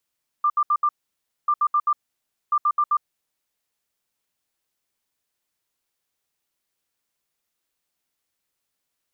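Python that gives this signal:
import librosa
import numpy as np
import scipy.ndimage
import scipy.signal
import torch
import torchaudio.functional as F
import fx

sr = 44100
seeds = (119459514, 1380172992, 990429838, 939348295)

y = fx.beep_pattern(sr, wave='sine', hz=1190.0, on_s=0.06, off_s=0.07, beeps=4, pause_s=0.59, groups=3, level_db=-16.0)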